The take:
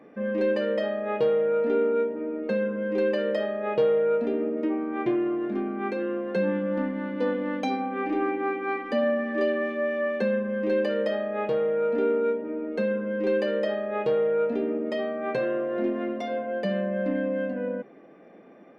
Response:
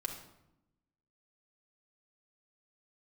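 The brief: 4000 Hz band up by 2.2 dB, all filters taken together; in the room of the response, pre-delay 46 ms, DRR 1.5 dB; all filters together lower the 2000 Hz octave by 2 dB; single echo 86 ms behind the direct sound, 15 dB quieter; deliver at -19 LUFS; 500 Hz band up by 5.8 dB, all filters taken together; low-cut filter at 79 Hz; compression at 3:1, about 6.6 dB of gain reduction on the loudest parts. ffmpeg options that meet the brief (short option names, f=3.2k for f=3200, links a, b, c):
-filter_complex "[0:a]highpass=79,equalizer=f=500:t=o:g=6.5,equalizer=f=2k:t=o:g=-4,equalizer=f=4k:t=o:g=5,acompressor=threshold=-22dB:ratio=3,aecho=1:1:86:0.178,asplit=2[a][b];[1:a]atrim=start_sample=2205,adelay=46[c];[b][c]afir=irnorm=-1:irlink=0,volume=-2dB[d];[a][d]amix=inputs=2:normalize=0,volume=5dB"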